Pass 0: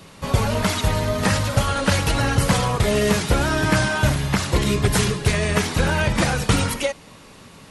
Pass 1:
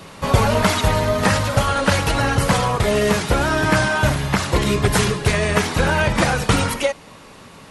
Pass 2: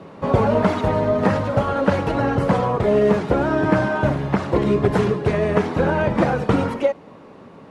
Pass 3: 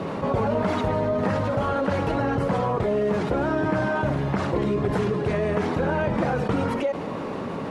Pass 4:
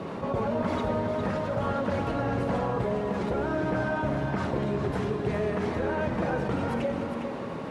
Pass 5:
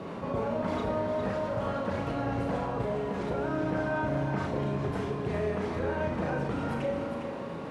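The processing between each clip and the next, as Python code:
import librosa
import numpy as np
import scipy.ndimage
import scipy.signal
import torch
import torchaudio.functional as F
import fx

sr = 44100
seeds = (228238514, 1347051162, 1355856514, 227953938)

y1 = fx.peak_eq(x, sr, hz=920.0, db=4.5, octaves=2.8)
y1 = fx.rider(y1, sr, range_db=10, speed_s=2.0)
y2 = fx.bandpass_q(y1, sr, hz=350.0, q=0.7)
y2 = F.gain(torch.from_numpy(y2), 3.5).numpy()
y3 = fx.env_flatten(y2, sr, amount_pct=70)
y3 = F.gain(torch.from_numpy(y3), -9.0).numpy()
y4 = y3 + 10.0 ** (-7.0 / 20.0) * np.pad(y3, (int(406 * sr / 1000.0), 0))[:len(y3)]
y4 = fx.rev_fdn(y4, sr, rt60_s=3.1, lf_ratio=1.0, hf_ratio=0.9, size_ms=26.0, drr_db=7.5)
y4 = F.gain(torch.from_numpy(y4), -6.0).numpy()
y5 = fx.room_flutter(y4, sr, wall_m=6.1, rt60_s=0.34)
y5 = F.gain(torch.from_numpy(y5), -4.0).numpy()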